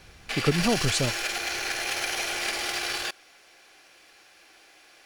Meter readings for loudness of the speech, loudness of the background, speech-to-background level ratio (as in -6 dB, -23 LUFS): -27.5 LUFS, -28.0 LUFS, 0.5 dB